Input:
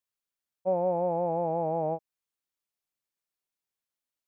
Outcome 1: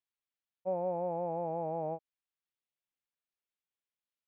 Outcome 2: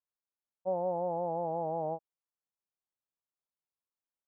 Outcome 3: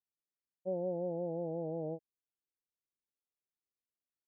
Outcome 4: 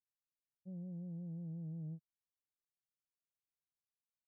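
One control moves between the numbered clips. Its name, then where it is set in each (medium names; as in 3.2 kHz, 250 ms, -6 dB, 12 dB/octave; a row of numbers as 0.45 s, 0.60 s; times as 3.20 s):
four-pole ladder low-pass, frequency: 4.2 kHz, 1.4 kHz, 540 Hz, 200 Hz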